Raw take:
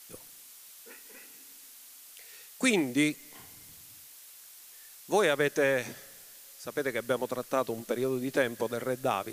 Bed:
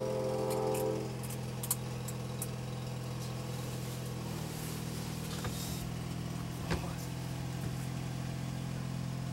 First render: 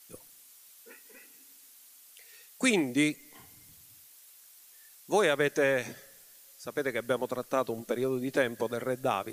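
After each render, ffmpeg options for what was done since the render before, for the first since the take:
-af "afftdn=nr=6:nf=-52"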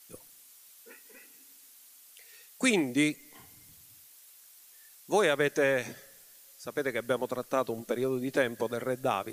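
-af anull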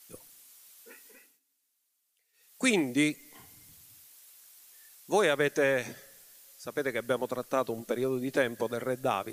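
-filter_complex "[0:a]asplit=3[a][b][c];[a]atrim=end=1.4,asetpts=PTS-STARTPTS,afade=t=out:st=1.05:d=0.35:silence=0.0794328[d];[b]atrim=start=1.4:end=2.33,asetpts=PTS-STARTPTS,volume=-22dB[e];[c]atrim=start=2.33,asetpts=PTS-STARTPTS,afade=t=in:d=0.35:silence=0.0794328[f];[d][e][f]concat=n=3:v=0:a=1"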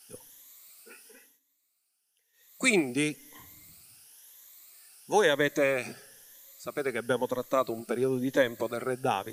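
-af "afftfilt=real='re*pow(10,10/40*sin(2*PI*(1.1*log(max(b,1)*sr/1024/100)/log(2)-(1)*(pts-256)/sr)))':imag='im*pow(10,10/40*sin(2*PI*(1.1*log(max(b,1)*sr/1024/100)/log(2)-(1)*(pts-256)/sr)))':win_size=1024:overlap=0.75"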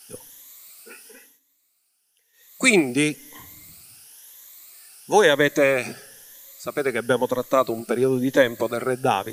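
-af "volume=7.5dB"

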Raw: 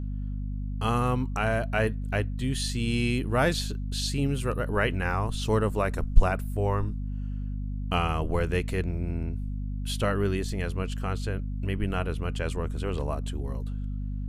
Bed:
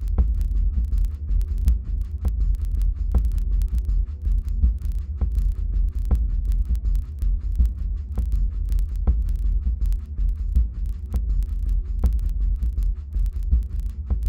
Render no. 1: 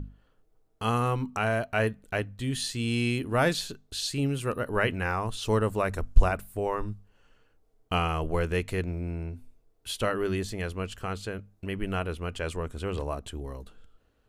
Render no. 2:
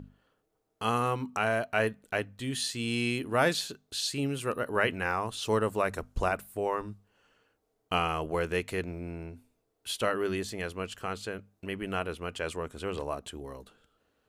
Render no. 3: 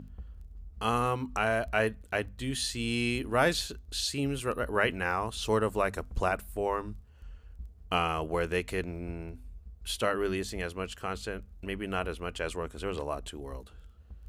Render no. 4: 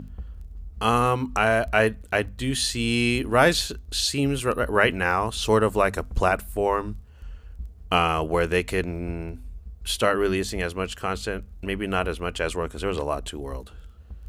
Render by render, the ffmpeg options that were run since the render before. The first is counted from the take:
-af "bandreject=f=50:t=h:w=6,bandreject=f=100:t=h:w=6,bandreject=f=150:t=h:w=6,bandreject=f=200:t=h:w=6,bandreject=f=250:t=h:w=6"
-af "highpass=f=240:p=1"
-filter_complex "[1:a]volume=-24.5dB[a];[0:a][a]amix=inputs=2:normalize=0"
-af "volume=7.5dB"

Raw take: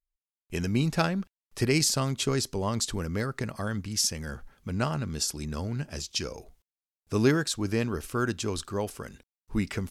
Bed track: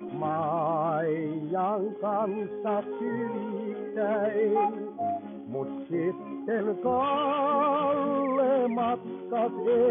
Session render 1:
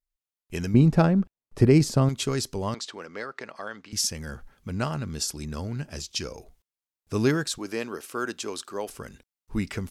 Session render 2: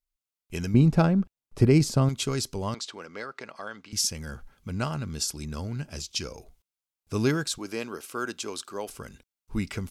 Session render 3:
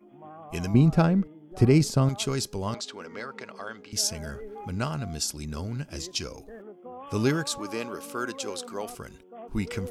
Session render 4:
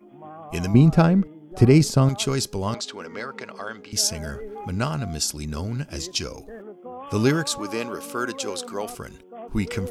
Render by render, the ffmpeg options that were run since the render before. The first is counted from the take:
-filter_complex "[0:a]asettb=1/sr,asplit=3[a][b][c];[a]atrim=end=0.744[d];[b]atrim=start=0.74:end=2.09,asetpts=PTS-STARTPTS,afade=t=in:d=0.004:c=qsin,afade=t=out:st=1.346:d=0.004:c=qsin,tiltshelf=f=1.3k:g=9[e];[c]atrim=start=2.086[f];[d][e]acrossfade=d=0.004:c1=hsin:c2=qsin[g];[g][f]acrossfade=d=0.004:c1=qsin:c2=hsin,asettb=1/sr,asplit=3[h][i][j];[h]atrim=end=2.744[k];[i]atrim=start=2.74:end=3.93,asetpts=PTS-STARTPTS,afade=t=in:d=0.004:c=qsin,afade=t=out:st=1.186:d=0.004:c=qsin,highpass=470,lowpass=4.3k[l];[j]atrim=start=3.926[m];[k][l]acrossfade=d=0.004:c1=hsin:c2=qsin[n];[n][m]acrossfade=d=0.004:c1=qsin:c2=hsin,asettb=1/sr,asplit=3[o][p][q];[o]atrim=end=7.584[r];[p]atrim=start=7.58:end=8.89,asetpts=PTS-STARTPTS,afade=t=in:d=0.004:c=qsin,afade=t=out:st=1.306:d=0.004:c=qsin,highpass=320[s];[q]atrim=start=8.886[t];[r][s]acrossfade=d=0.004:c1=hsin:c2=qsin[u];[u][t]acrossfade=d=0.004:c1=qsin:c2=hsin"
-af "equalizer=f=460:t=o:w=2.5:g=-2.5,bandreject=f=1.8k:w=10"
-filter_complex "[1:a]volume=-16.5dB[a];[0:a][a]amix=inputs=2:normalize=0"
-af "volume=4.5dB"

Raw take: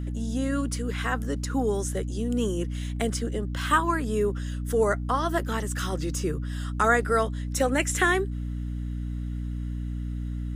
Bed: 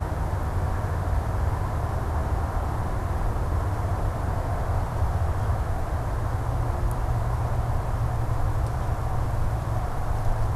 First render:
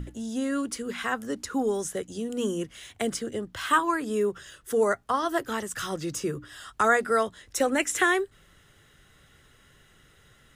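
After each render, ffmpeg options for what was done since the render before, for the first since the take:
-af "bandreject=f=60:t=h:w=6,bandreject=f=120:t=h:w=6,bandreject=f=180:t=h:w=6,bandreject=f=240:t=h:w=6,bandreject=f=300:t=h:w=6"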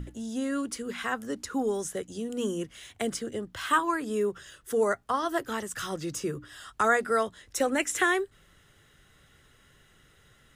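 -af "volume=-2dB"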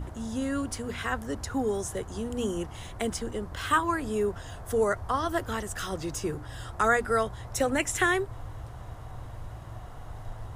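-filter_complex "[1:a]volume=-15dB[a];[0:a][a]amix=inputs=2:normalize=0"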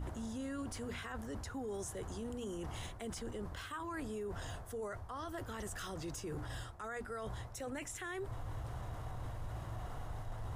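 -af "areverse,acompressor=threshold=-36dB:ratio=12,areverse,alimiter=level_in=11dB:limit=-24dB:level=0:latency=1:release=13,volume=-11dB"

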